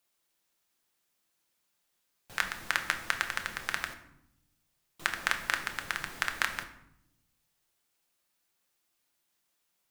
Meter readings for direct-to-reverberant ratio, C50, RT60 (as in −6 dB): 5.5 dB, 10.5 dB, 0.80 s